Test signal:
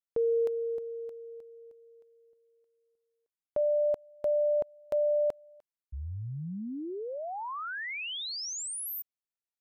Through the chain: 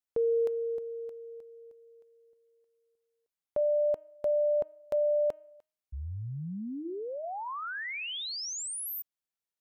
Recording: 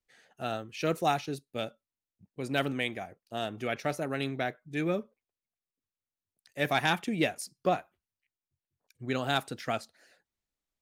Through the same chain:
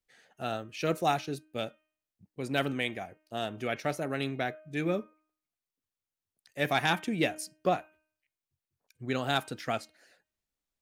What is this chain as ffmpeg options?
ffmpeg -i in.wav -af "bandreject=frequency=310.2:width_type=h:width=4,bandreject=frequency=620.4:width_type=h:width=4,bandreject=frequency=930.6:width_type=h:width=4,bandreject=frequency=1240.8:width_type=h:width=4,bandreject=frequency=1551:width_type=h:width=4,bandreject=frequency=1861.2:width_type=h:width=4,bandreject=frequency=2171.4:width_type=h:width=4,bandreject=frequency=2481.6:width_type=h:width=4,bandreject=frequency=2791.8:width_type=h:width=4,bandreject=frequency=3102:width_type=h:width=4" out.wav

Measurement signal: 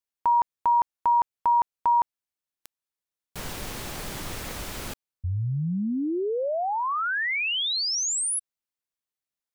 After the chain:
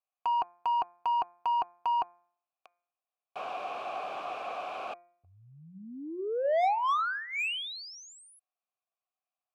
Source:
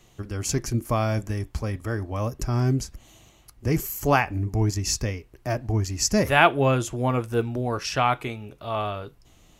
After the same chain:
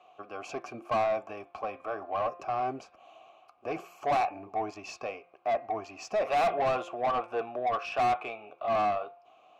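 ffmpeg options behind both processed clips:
ffmpeg -i in.wav -filter_complex "[0:a]asplit=3[link_01][link_02][link_03];[link_01]bandpass=frequency=730:width_type=q:width=8,volume=0dB[link_04];[link_02]bandpass=frequency=1090:width_type=q:width=8,volume=-6dB[link_05];[link_03]bandpass=frequency=2440:width_type=q:width=8,volume=-9dB[link_06];[link_04][link_05][link_06]amix=inputs=3:normalize=0,asplit=2[link_07][link_08];[link_08]highpass=frequency=720:poles=1,volume=30dB,asoftclip=type=tanh:threshold=-10.5dB[link_09];[link_07][link_09]amix=inputs=2:normalize=0,lowpass=frequency=1500:poles=1,volume=-6dB,bandreject=frequency=174.8:width_type=h:width=4,bandreject=frequency=349.6:width_type=h:width=4,bandreject=frequency=524.4:width_type=h:width=4,bandreject=frequency=699.2:width_type=h:width=4,bandreject=frequency=874:width_type=h:width=4,bandreject=frequency=1048.8:width_type=h:width=4,bandreject=frequency=1223.6:width_type=h:width=4,bandreject=frequency=1398.4:width_type=h:width=4,bandreject=frequency=1573.2:width_type=h:width=4,bandreject=frequency=1748:width_type=h:width=4,bandreject=frequency=1922.8:width_type=h:width=4,bandreject=frequency=2097.6:width_type=h:width=4,bandreject=frequency=2272.4:width_type=h:width=4,bandreject=frequency=2447.2:width_type=h:width=4,volume=-7dB" out.wav

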